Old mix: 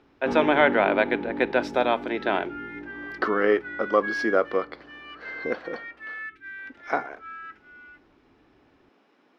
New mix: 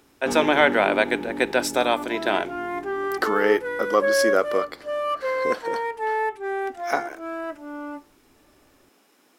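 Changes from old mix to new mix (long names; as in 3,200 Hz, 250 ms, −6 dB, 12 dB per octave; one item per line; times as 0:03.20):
second sound: remove Chebyshev high-pass filter 1,300 Hz, order 8
master: remove high-frequency loss of the air 270 metres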